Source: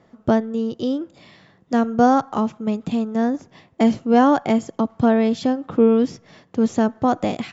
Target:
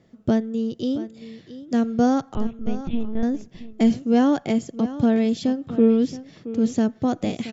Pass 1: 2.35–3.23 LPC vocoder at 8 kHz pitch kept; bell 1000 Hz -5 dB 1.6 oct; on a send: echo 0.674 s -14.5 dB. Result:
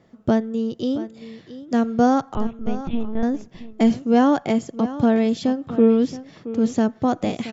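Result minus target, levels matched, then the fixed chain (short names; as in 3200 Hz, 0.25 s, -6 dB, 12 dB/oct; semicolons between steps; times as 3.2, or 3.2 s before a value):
1000 Hz band +4.0 dB
2.35–3.23 LPC vocoder at 8 kHz pitch kept; bell 1000 Hz -12 dB 1.6 oct; on a send: echo 0.674 s -14.5 dB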